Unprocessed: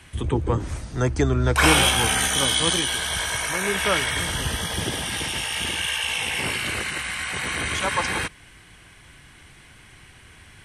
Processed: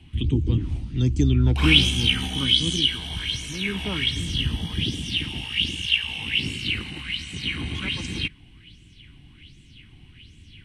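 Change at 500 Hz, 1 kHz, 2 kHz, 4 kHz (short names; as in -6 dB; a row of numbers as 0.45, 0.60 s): -9.5, -15.0, -4.5, +2.5 dB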